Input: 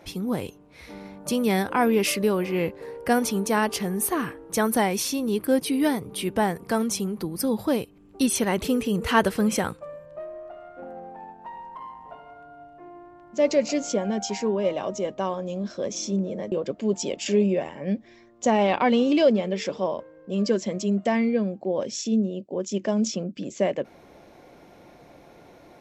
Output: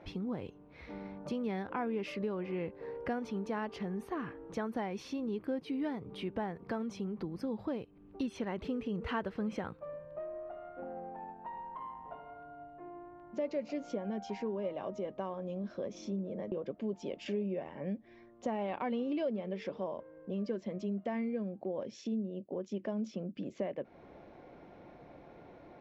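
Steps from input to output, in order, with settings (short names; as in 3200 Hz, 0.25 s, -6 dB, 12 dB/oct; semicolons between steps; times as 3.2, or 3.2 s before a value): bell 4900 Hz -3 dB 2.1 oct; compressor 2.5:1, threshold -34 dBFS, peak gain reduction 13.5 dB; air absorption 230 m; gain -3 dB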